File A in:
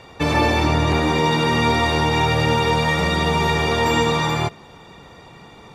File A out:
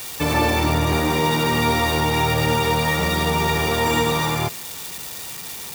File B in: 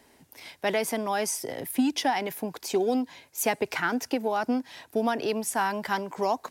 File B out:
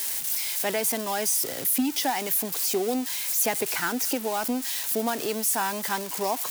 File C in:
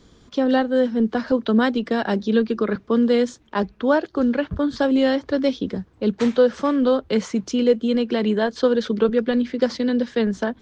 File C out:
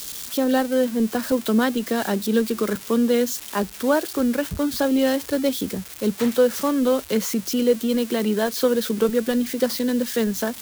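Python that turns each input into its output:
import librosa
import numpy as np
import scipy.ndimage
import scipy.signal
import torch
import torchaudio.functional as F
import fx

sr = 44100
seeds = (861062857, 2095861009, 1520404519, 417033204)

y = x + 0.5 * 10.0 ** (-20.0 / 20.0) * np.diff(np.sign(x), prepend=np.sign(x[:1]))
y = y * 10.0 ** (-1.5 / 20.0)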